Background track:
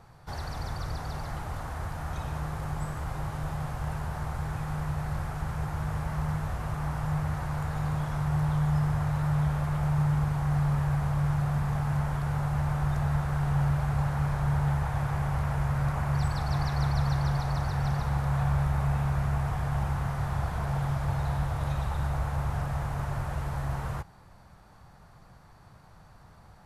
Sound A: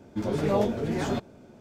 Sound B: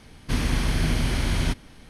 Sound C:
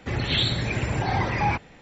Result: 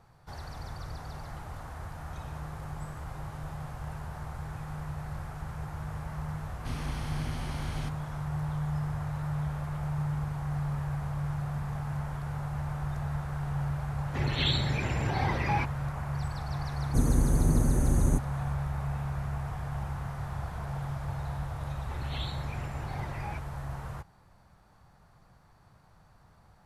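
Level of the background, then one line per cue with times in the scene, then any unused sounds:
background track -6 dB
6.36 s: add B -14 dB
14.08 s: add C -5.5 dB
16.65 s: add B -0.5 dB + brick-wall FIR band-stop 630–6000 Hz
21.82 s: add C -17 dB
not used: A

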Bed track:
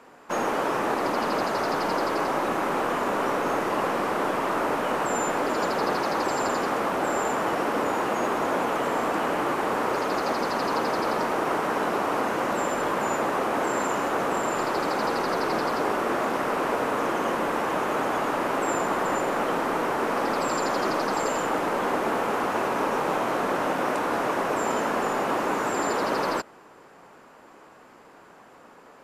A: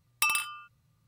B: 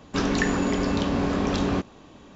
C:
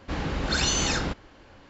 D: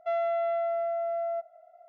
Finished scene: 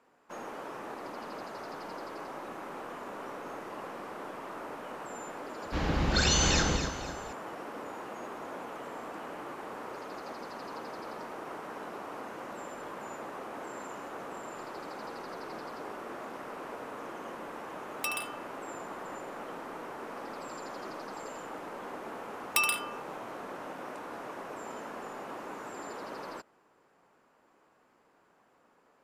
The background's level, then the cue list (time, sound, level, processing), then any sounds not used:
bed track -16 dB
5.64 s: add C -1.5 dB + echo whose repeats swap between lows and highs 126 ms, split 1 kHz, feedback 59%, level -4 dB
17.82 s: add A -7.5 dB
22.34 s: add A -0.5 dB
not used: B, D

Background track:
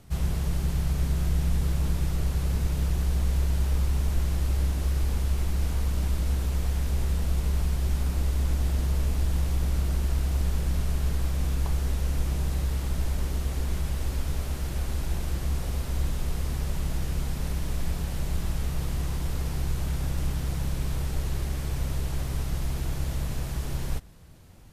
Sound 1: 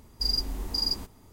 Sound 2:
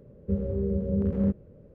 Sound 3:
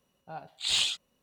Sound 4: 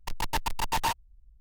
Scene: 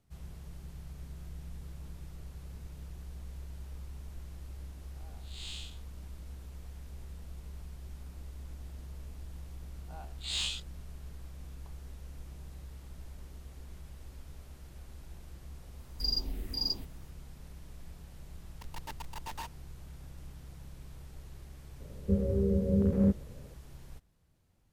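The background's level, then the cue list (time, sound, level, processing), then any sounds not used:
background track -19.5 dB
4.73 s: add 3 -13.5 dB + spectral blur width 205 ms
9.63 s: add 3 -11.5 dB + every event in the spectrogram widened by 60 ms
15.79 s: add 1 -4 dB + touch-sensitive phaser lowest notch 440 Hz, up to 1.8 kHz, full sweep at -24 dBFS
18.54 s: add 4 -14.5 dB
21.80 s: add 2 -0.5 dB

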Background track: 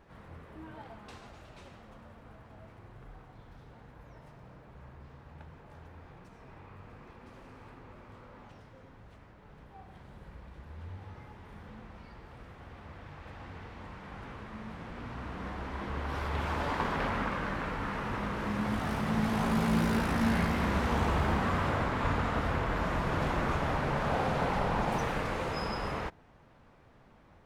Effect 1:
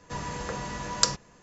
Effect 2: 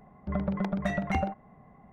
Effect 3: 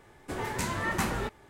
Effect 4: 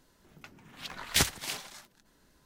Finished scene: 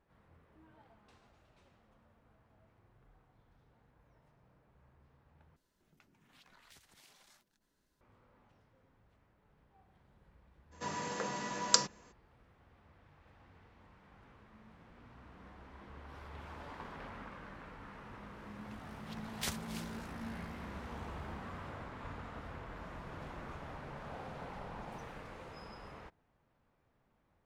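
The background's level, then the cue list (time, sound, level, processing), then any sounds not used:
background track -16 dB
5.56 s: replace with 4 -14.5 dB + compression, threshold -45 dBFS
10.71 s: add 1 -3.5 dB, fades 0.02 s + high-pass 170 Hz 24 dB/octave
18.27 s: add 4 -13.5 dB
not used: 2, 3

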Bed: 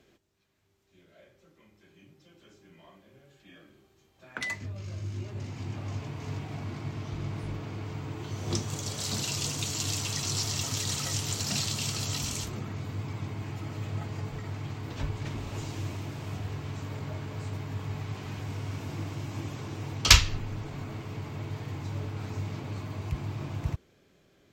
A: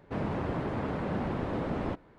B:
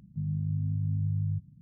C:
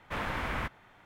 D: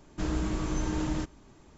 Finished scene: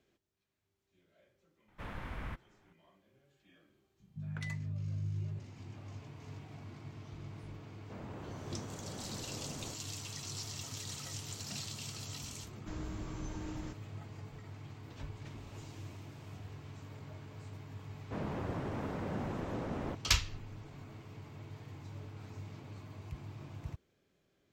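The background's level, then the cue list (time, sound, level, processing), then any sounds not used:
bed -12 dB
1.68 s: add C -13.5 dB + bass shelf 260 Hz +10 dB
4.00 s: add B -10 dB
7.79 s: add A -15 dB
12.48 s: add D -12.5 dB
18.00 s: add A -6.5 dB

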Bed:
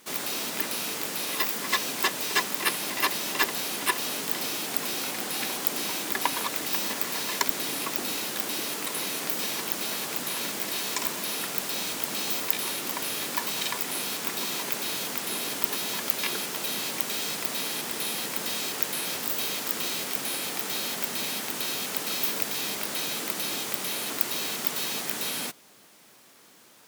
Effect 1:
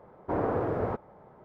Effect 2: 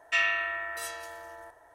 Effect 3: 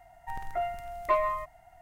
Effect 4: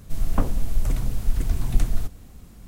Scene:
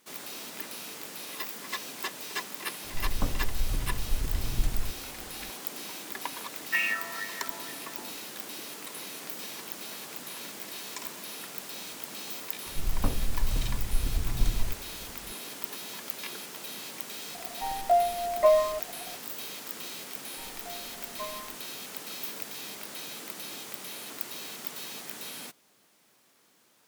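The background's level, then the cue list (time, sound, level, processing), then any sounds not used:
bed -9.5 dB
2.84 s: add 4 -7.5 dB
6.60 s: add 2 -13.5 dB + sweeping bell 2.1 Hz 850–2600 Hz +17 dB
12.66 s: add 4 -6 dB
17.34 s: add 3 -4.5 dB + high-order bell 630 Hz +13.5 dB 1 oct
20.10 s: add 3 -14 dB
not used: 1

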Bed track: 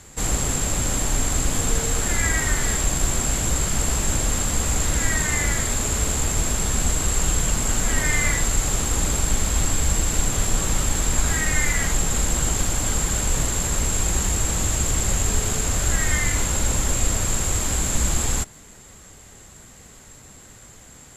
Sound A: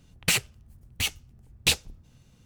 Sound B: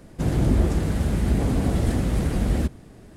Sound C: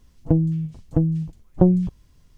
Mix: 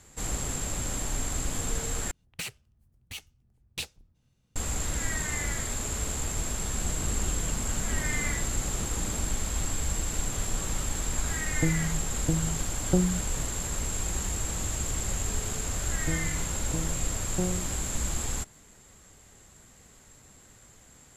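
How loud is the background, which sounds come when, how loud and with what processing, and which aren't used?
bed track -9 dB
2.11 s: replace with A -13 dB
6.62 s: add B -17 dB
11.32 s: add C -8.5 dB
15.77 s: add C -16 dB + spectral sustain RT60 0.82 s

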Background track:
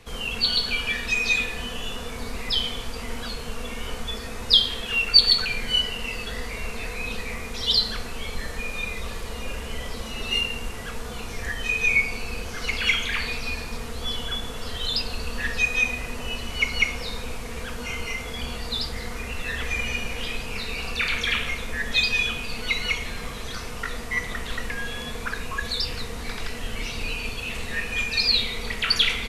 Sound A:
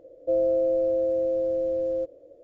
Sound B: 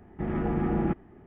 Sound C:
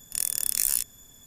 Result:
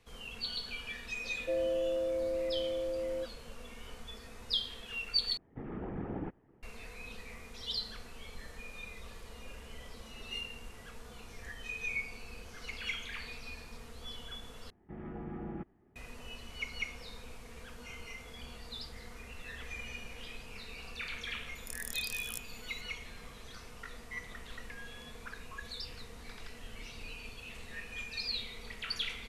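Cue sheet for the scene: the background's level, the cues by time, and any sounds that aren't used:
background track -16 dB
1.20 s: add A -9.5 dB
5.37 s: replace with B -12.5 dB + whisper effect
14.70 s: replace with B -15 dB
21.55 s: add C -12 dB + compressor with a negative ratio -34 dBFS

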